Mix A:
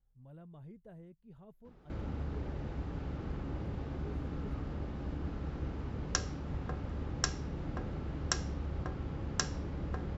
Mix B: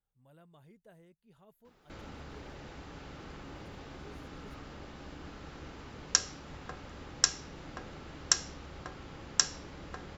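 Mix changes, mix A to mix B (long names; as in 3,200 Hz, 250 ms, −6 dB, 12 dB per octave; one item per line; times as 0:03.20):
background: remove high-pass filter 50 Hz
master: add spectral tilt +3.5 dB per octave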